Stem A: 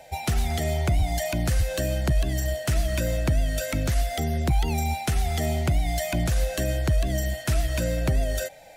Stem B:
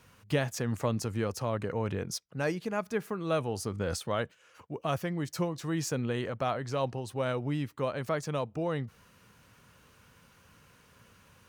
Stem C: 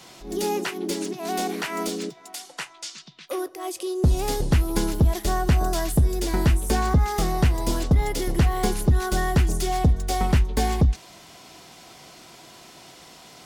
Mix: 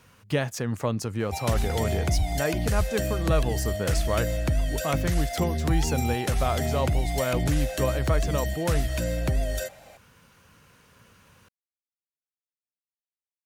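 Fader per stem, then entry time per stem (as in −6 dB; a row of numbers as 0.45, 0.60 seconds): −2.0 dB, +3.0 dB, muted; 1.20 s, 0.00 s, muted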